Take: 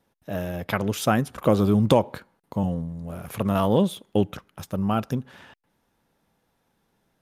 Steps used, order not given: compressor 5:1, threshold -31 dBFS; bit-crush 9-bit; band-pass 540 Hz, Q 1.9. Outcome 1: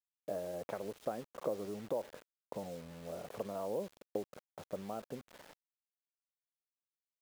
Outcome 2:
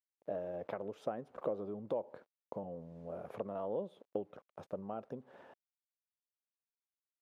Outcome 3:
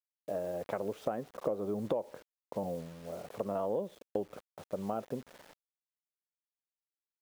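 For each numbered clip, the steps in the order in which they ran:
compressor > band-pass > bit-crush; bit-crush > compressor > band-pass; band-pass > bit-crush > compressor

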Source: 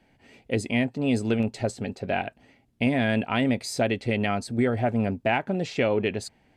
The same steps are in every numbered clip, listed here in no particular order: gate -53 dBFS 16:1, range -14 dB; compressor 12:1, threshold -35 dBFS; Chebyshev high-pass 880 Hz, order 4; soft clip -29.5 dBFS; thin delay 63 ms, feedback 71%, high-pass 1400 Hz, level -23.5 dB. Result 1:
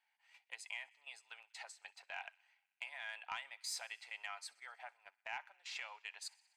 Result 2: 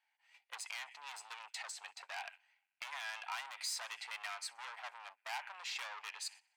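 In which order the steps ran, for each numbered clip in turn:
compressor > Chebyshev high-pass > soft clip > gate > thin delay; thin delay > soft clip > compressor > Chebyshev high-pass > gate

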